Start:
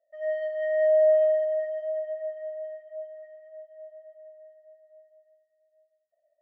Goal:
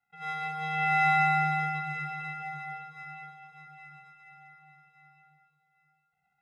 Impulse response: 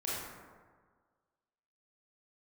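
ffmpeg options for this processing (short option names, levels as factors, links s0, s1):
-filter_complex "[0:a]aeval=exprs='max(val(0),0)':c=same,aeval=exprs='val(0)*sin(2*PI*1400*n/s)':c=same,asplit=2[s0][s1];[1:a]atrim=start_sample=2205,asetrate=22050,aresample=44100[s2];[s1][s2]afir=irnorm=-1:irlink=0,volume=0.562[s3];[s0][s3]amix=inputs=2:normalize=0,volume=0.562"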